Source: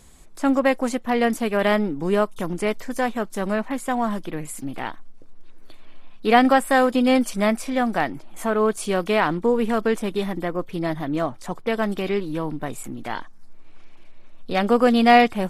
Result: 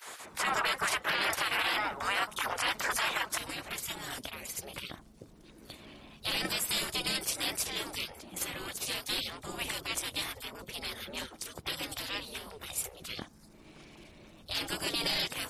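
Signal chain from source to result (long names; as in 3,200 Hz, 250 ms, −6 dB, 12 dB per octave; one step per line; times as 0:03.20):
gate on every frequency bin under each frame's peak −25 dB weak
parametric band 1,300 Hz +9 dB 2.4 octaves, from 0:03.38 −8.5 dB
brickwall limiter −28.5 dBFS, peak gain reduction 12 dB
level +8.5 dB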